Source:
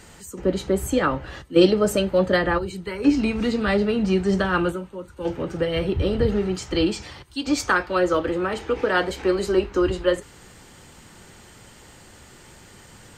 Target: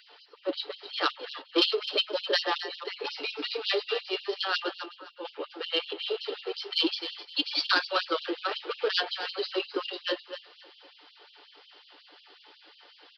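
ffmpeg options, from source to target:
-filter_complex "[0:a]bandreject=f=600:w=12,aecho=1:1:6.8:0.5,adynamicsmooth=sensitivity=1.5:basefreq=2.4k,aresample=11025,asoftclip=type=tanh:threshold=-13.5dB,aresample=44100,aexciter=amount=5.3:drive=5.4:freq=2.9k,asplit=2[a][b];[b]aecho=0:1:258|516|774:0.266|0.0745|0.0209[c];[a][c]amix=inputs=2:normalize=0,afftfilt=real='re*gte(b*sr/1024,270*pow(2800/270,0.5+0.5*sin(2*PI*5.5*pts/sr)))':imag='im*gte(b*sr/1024,270*pow(2800/270,0.5+0.5*sin(2*PI*5.5*pts/sr)))':win_size=1024:overlap=0.75,volume=-3.5dB"

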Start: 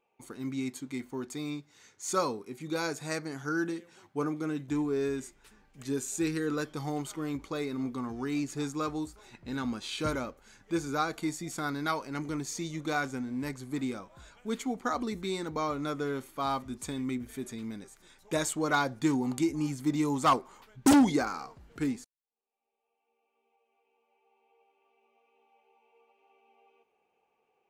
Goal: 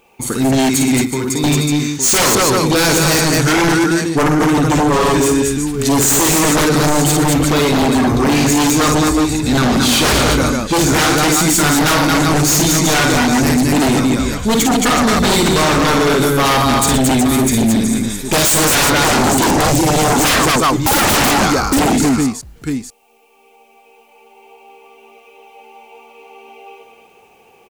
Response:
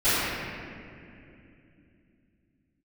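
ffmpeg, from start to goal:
-filter_complex "[0:a]highshelf=f=3k:g=10.5,aecho=1:1:53|120|223|371|859:0.562|0.266|0.631|0.376|0.211,asplit=2[a][b];[b]asoftclip=type=hard:threshold=-25.5dB,volume=-5dB[c];[a][c]amix=inputs=2:normalize=0,lowshelf=f=180:g=11,asettb=1/sr,asplit=3[d][e][f];[d]atrim=end=1.024[g];[e]atrim=start=1.02:end=1.44,asetpts=PTS-STARTPTS,afade=t=in:d=0.004:c=qsin,afade=t=out:st=0.416:d=0.004:c=qsin,acompressor=threshold=-31dB:ratio=10[h];[f]atrim=start=1.436[i];[g][h]acrossfade=d=0.004:c1=hsin:c2=qsin[j];[j][i]acrossfade=d=0.004:c1=qsin:c2=hsin,aeval=exprs='0.335*sin(PI/2*4.47*val(0)/0.335)':c=same"

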